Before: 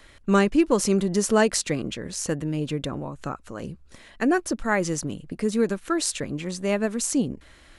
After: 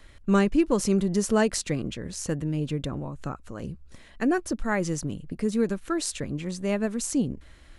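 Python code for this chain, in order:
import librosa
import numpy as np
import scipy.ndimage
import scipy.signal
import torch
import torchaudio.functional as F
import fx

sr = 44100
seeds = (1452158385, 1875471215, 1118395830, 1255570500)

y = fx.low_shelf(x, sr, hz=180.0, db=9.0)
y = F.gain(torch.from_numpy(y), -4.5).numpy()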